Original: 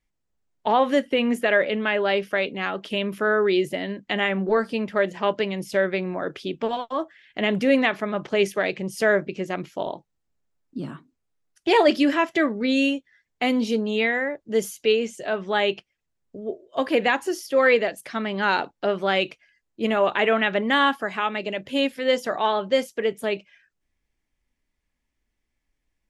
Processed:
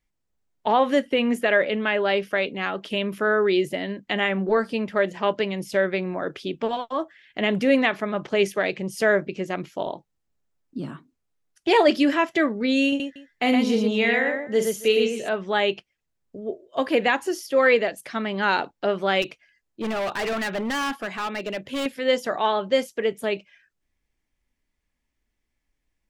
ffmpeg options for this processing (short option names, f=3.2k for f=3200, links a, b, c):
-filter_complex "[0:a]asettb=1/sr,asplit=3[a][b][c];[a]atrim=end=12.884[d];[b]atrim=start=12.88:end=15.29,asetpts=PTS-STARTPTS,afade=t=in:d=0.004:c=qsin,afade=t=out:st=2.406:d=0.004:c=qsin,aecho=1:1:43|117|276:0.398|0.631|0.112,atrim=end_sample=106281[e];[c]atrim=start=15.286[f];[d][e]acrossfade=d=0.004:c1=hsin:c2=qsin[g];[g][f]acrossfade=d=0.004:c1=qsin:c2=hsin,asettb=1/sr,asplit=3[h][i][j];[h]atrim=end=19.224[k];[i]atrim=start=19.22:end=21.86,asetpts=PTS-STARTPTS,afade=t=in:d=0.004:c=qsin,afade=t=out:st=2.636:d=0.004:c=qsin,volume=24dB,asoftclip=hard,volume=-24dB[l];[j]atrim=start=21.856[m];[k][l]acrossfade=d=0.004:c1=hsin:c2=qsin[n];[n][m]acrossfade=d=0.004:c1=qsin:c2=hsin"